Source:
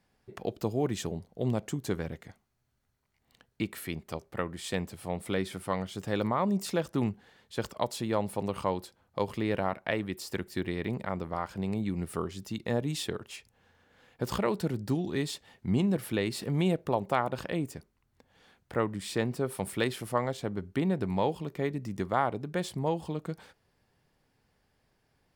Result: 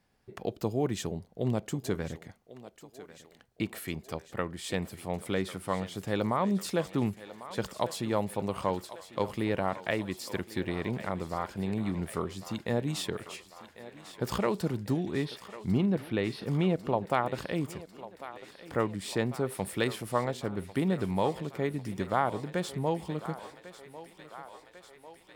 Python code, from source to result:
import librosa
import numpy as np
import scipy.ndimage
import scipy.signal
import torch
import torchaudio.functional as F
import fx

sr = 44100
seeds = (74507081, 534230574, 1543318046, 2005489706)

y = fx.moving_average(x, sr, points=6, at=(15.09, 17.1))
y = fx.echo_thinned(y, sr, ms=1097, feedback_pct=74, hz=390.0, wet_db=-14.0)